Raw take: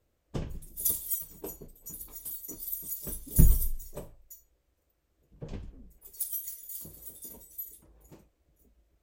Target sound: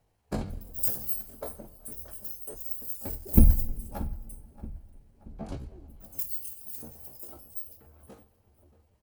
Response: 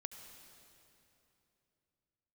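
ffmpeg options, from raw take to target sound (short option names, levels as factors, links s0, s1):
-filter_complex "[0:a]bandreject=f=2500:w=13,asetrate=62367,aresample=44100,atempo=0.707107,asplit=2[s0][s1];[s1]adelay=629,lowpass=f=2700:p=1,volume=0.141,asplit=2[s2][s3];[s3]adelay=629,lowpass=f=2700:p=1,volume=0.5,asplit=2[s4][s5];[s5]adelay=629,lowpass=f=2700:p=1,volume=0.5,asplit=2[s6][s7];[s7]adelay=629,lowpass=f=2700:p=1,volume=0.5[s8];[s0][s2][s4][s6][s8]amix=inputs=5:normalize=0,asplit=2[s9][s10];[1:a]atrim=start_sample=2205[s11];[s10][s11]afir=irnorm=-1:irlink=0,volume=0.376[s12];[s9][s12]amix=inputs=2:normalize=0,volume=1.12"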